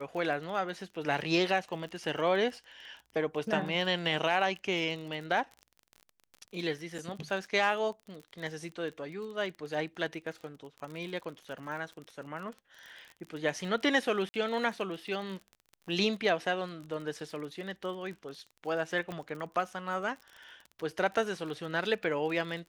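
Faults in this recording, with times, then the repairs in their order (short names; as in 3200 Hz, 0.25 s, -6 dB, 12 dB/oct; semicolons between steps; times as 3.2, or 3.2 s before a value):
crackle 32/s -39 dBFS
6.98–6.99 gap 6.3 ms
14.29–14.34 gap 50 ms
19.12 pop -25 dBFS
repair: de-click; interpolate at 6.98, 6.3 ms; interpolate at 14.29, 50 ms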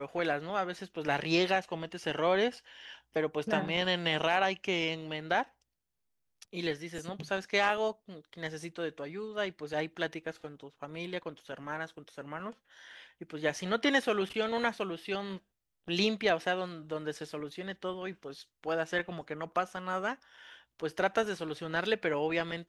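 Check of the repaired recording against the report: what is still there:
19.12 pop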